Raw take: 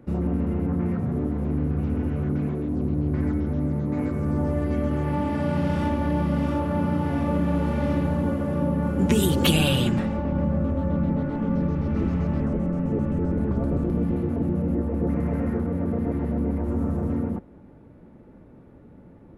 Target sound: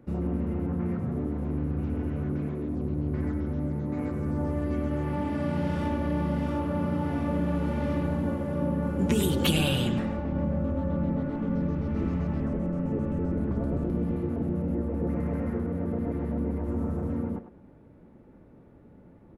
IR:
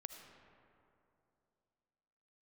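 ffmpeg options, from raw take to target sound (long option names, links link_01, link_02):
-filter_complex "[0:a]asplit=2[link_01][link_02];[link_02]adelay=100,highpass=300,lowpass=3400,asoftclip=type=hard:threshold=-17dB,volume=-8dB[link_03];[link_01][link_03]amix=inputs=2:normalize=0,volume=-4.5dB"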